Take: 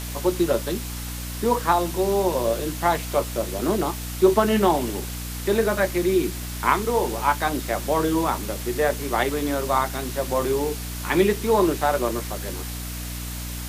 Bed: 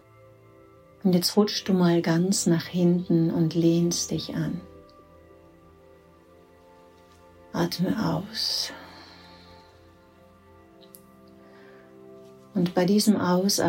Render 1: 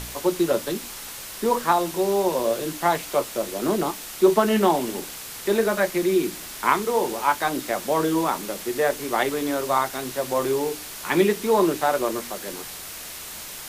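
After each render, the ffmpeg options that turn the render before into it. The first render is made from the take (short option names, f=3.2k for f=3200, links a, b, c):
-af "bandreject=f=60:t=h:w=4,bandreject=f=120:t=h:w=4,bandreject=f=180:t=h:w=4,bandreject=f=240:t=h:w=4,bandreject=f=300:t=h:w=4"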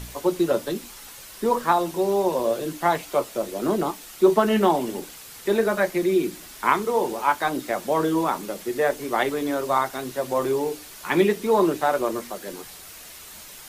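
-af "afftdn=nr=7:nf=-37"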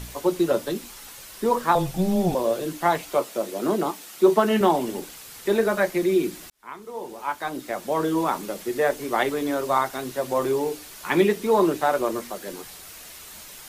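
-filter_complex "[0:a]asettb=1/sr,asplit=3[a][b][c];[a]atrim=end=1.754[d];[b]atrim=start=1.75:end=2.35,asetpts=PTS-STARTPTS,afade=t=in:d=0.004:c=qsin,afade=t=out:st=0.596:d=0.004:c=qsin,afreqshift=-190[e];[c]atrim=start=2.346[f];[d][e]acrossfade=d=0.004:c1=hsin:c2=qsin[g];[g][f]acrossfade=d=0.004:c1=qsin:c2=hsin,asettb=1/sr,asplit=3[h][i][j];[h]atrim=end=3.174[k];[i]atrim=start=3.17:end=4.61,asetpts=PTS-STARTPTS,afade=t=in:d=0.004:c=qsin,afade=t=out:st=1.436:d=0.004:c=qsin,highpass=150[l];[j]atrim=start=4.606[m];[k][l]acrossfade=d=0.004:c1=hsin:c2=qsin[n];[n][m]acrossfade=d=0.004:c1=qsin:c2=hsin,asplit=2[o][p];[o]atrim=end=6.5,asetpts=PTS-STARTPTS,afade=t=out:st=6.496:d=0.004:c=hsin[q];[p]atrim=start=6.5,asetpts=PTS-STARTPTS,afade=t=in:d=1.84[r];[q][r]concat=n=2:v=0:a=1"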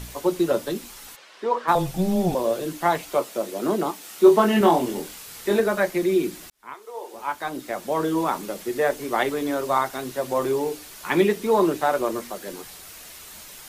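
-filter_complex "[0:a]asplit=3[a][b][c];[a]afade=t=out:st=1.15:d=0.02[d];[b]highpass=430,lowpass=3.6k,afade=t=in:st=1.15:d=0.02,afade=t=out:st=1.67:d=0.02[e];[c]afade=t=in:st=1.67:d=0.02[f];[d][e][f]amix=inputs=3:normalize=0,asettb=1/sr,asplit=3[g][h][i];[g]atrim=end=4.024[j];[h]atrim=start=4.02:end=5.6,asetpts=PTS-STARTPTS,afade=t=in:d=0.004:c=qsin,afade=t=out:st=1.576:d=0.004:c=qsin,asplit=2[k][l];[l]adelay=24,volume=-3dB[m];[k][m]amix=inputs=2:normalize=0,atrim=end_sample=69678[n];[i]atrim=start=5.596[o];[j][n]acrossfade=d=0.004:c1=hsin:c2=qsin[p];[p][o]acrossfade=d=0.004:c1=qsin:c2=hsin,asettb=1/sr,asplit=3[q][r][s];[q]atrim=end=6.744[t];[r]atrim=start=6.74:end=7.14,asetpts=PTS-STARTPTS,afade=t=in:d=0.004:c=qsin,afade=t=out:st=0.396:d=0.004:c=qsin,highpass=f=410:w=0.5412,highpass=f=410:w=1.3066[u];[s]atrim=start=7.136[v];[t][u]acrossfade=d=0.004:c1=hsin:c2=qsin[w];[w][v]acrossfade=d=0.004:c1=qsin:c2=hsin"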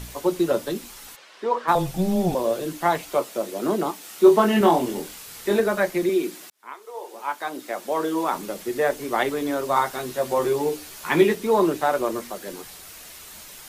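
-filter_complex "[0:a]asettb=1/sr,asplit=3[a][b][c];[a]atrim=end=6.094[d];[b]atrim=start=6.09:end=8.33,asetpts=PTS-STARTPTS,afade=t=in:d=0.004:c=qsin,afade=t=out:st=2.236:d=0.004:c=qsin,highpass=270[e];[c]atrim=start=8.326[f];[d][e]acrossfade=d=0.004:c1=hsin:c2=qsin[g];[g][f]acrossfade=d=0.004:c1=qsin:c2=hsin,asettb=1/sr,asplit=3[h][i][j];[h]atrim=end=9.754[k];[i]atrim=start=9.75:end=11.35,asetpts=PTS-STARTPTS,afade=t=in:d=0.004:c=qsin,afade=t=out:st=1.596:d=0.004:c=qsin,asplit=2[l][m];[m]adelay=13,volume=-3.5dB[n];[l][n]amix=inputs=2:normalize=0,atrim=end_sample=70560[o];[j]atrim=start=11.346[p];[k][o]acrossfade=d=0.004:c1=hsin:c2=qsin[q];[q][p]acrossfade=d=0.004:c1=qsin:c2=hsin"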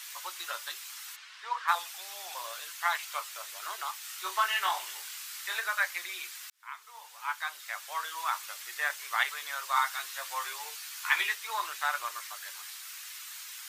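-af "highpass=f=1.2k:w=0.5412,highpass=f=1.2k:w=1.3066,equalizer=f=11k:w=1.7:g=-4"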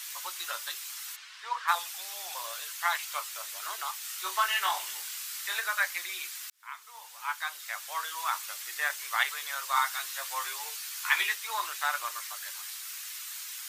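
-af "highpass=240,highshelf=f=4.4k:g=5"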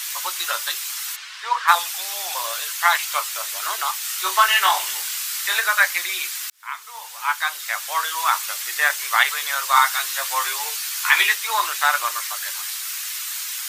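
-af "volume=11.5dB,alimiter=limit=-1dB:level=0:latency=1"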